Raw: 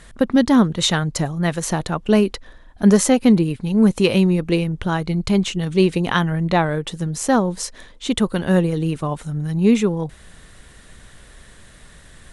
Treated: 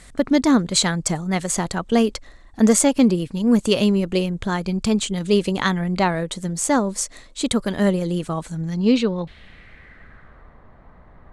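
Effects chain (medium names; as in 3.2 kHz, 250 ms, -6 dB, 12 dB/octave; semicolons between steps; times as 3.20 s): speed mistake 44.1 kHz file played as 48 kHz; low-pass sweep 8.2 kHz -> 1 kHz, 8.40–10.56 s; trim -2 dB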